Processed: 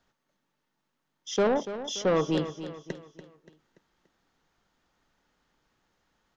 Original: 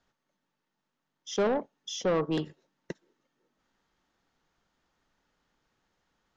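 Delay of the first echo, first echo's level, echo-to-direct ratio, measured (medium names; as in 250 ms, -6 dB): 288 ms, -12.0 dB, -11.0 dB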